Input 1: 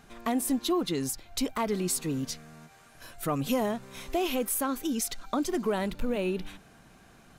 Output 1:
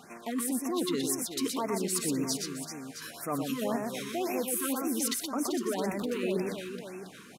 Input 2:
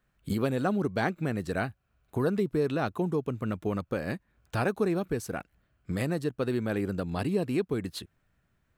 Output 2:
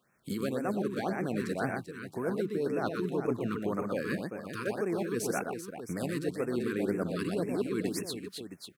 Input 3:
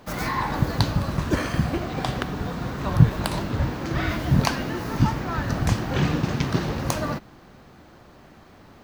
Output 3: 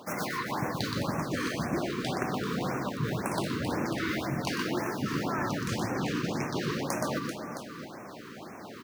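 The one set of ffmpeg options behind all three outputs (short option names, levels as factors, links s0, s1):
-af "highpass=200,equalizer=f=9500:w=6.2:g=2.5,areverse,acompressor=threshold=0.02:ratio=16,areverse,aecho=1:1:97|122|389|666:0.119|0.631|0.355|0.266,afftfilt=real='re*(1-between(b*sr/1024,660*pow(3900/660,0.5+0.5*sin(2*PI*1.9*pts/sr))/1.41,660*pow(3900/660,0.5+0.5*sin(2*PI*1.9*pts/sr))*1.41))':imag='im*(1-between(b*sr/1024,660*pow(3900/660,0.5+0.5*sin(2*PI*1.9*pts/sr))/1.41,660*pow(3900/660,0.5+0.5*sin(2*PI*1.9*pts/sr))*1.41))':win_size=1024:overlap=0.75,volume=1.88"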